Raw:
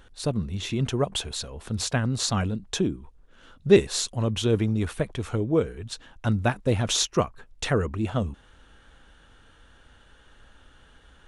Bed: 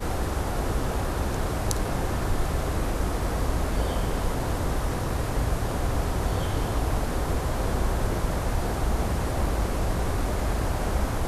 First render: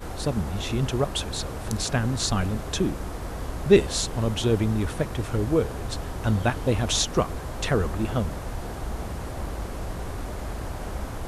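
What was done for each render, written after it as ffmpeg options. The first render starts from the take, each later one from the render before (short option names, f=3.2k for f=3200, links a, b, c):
-filter_complex "[1:a]volume=-6.5dB[a];[0:a][a]amix=inputs=2:normalize=0"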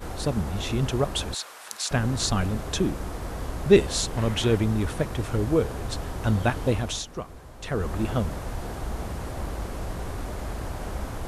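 -filter_complex "[0:a]asettb=1/sr,asplit=3[a][b][c];[a]atrim=end=1.344[d];[b]atrim=start=1.34:end=1.91,asetpts=PTS-STARTPTS,afade=t=in:d=0.004:c=qsin,afade=t=out:st=0.566:d=0.004:c=qsin,highpass=1.2k[e];[c]atrim=start=1.906[f];[d][e]acrossfade=d=0.004:c1=hsin:c2=qsin[g];[g][f]acrossfade=d=0.004:c1=qsin:c2=hsin,asettb=1/sr,asplit=3[h][i][j];[h]atrim=end=4.174[k];[i]atrim=start=4.17:end=4.57,asetpts=PTS-STARTPTS,afade=t=in:d=0.004:c=qsin,afade=t=out:st=0.396:d=0.004:c=qsin,equalizer=f=2k:t=o:w=0.97:g=7[l];[j]atrim=start=4.566[m];[k][l]acrossfade=d=0.004:c1=hsin:c2=qsin[n];[n][m]acrossfade=d=0.004:c1=qsin:c2=hsin,asplit=3[o][p][q];[o]atrim=end=7.04,asetpts=PTS-STARTPTS,afade=t=out:st=6.68:d=0.36:silence=0.266073[r];[p]atrim=start=7.04:end=7.6,asetpts=PTS-STARTPTS,volume=-11.5dB[s];[q]atrim=start=7.6,asetpts=PTS-STARTPTS,afade=t=in:d=0.36:silence=0.266073[t];[r][s][t]concat=n=3:v=0:a=1"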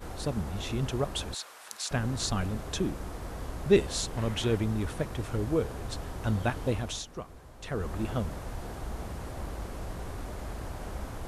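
-af "volume=-5.5dB"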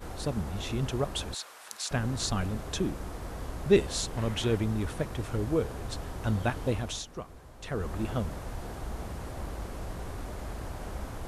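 -af anull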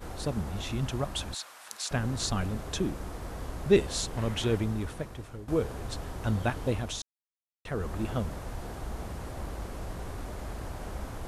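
-filter_complex "[0:a]asettb=1/sr,asplit=3[a][b][c];[a]atrim=end=0.624[d];[b]atrim=start=0.62:end=1.7,asetpts=PTS-STARTPTS,afade=t=in:d=0.004:c=qsin,afade=t=out:st=1.076:d=0.004:c=qsin,equalizer=f=430:w=3.2:g=-7.5[e];[c]atrim=start=1.696[f];[d][e]acrossfade=d=0.004:c1=hsin:c2=qsin[g];[g][f]acrossfade=d=0.004:c1=qsin:c2=hsin,asplit=4[h][i][j][k];[h]atrim=end=5.48,asetpts=PTS-STARTPTS,afade=t=out:st=4.58:d=0.9:silence=0.177828[l];[i]atrim=start=5.48:end=7.02,asetpts=PTS-STARTPTS,afade=t=in:d=0.004:c=hsin:silence=0.177828,afade=t=out:st=1.536:d=0.004:c=hsin[m];[j]atrim=start=7.02:end=7.65,asetpts=PTS-STARTPTS,volume=0[n];[k]atrim=start=7.65,asetpts=PTS-STARTPTS,afade=t=in:d=0.004:c=hsin[o];[l][m][n][o]concat=n=4:v=0:a=1"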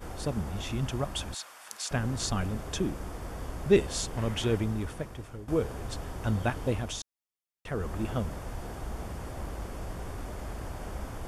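-af "bandreject=f=4k:w=10"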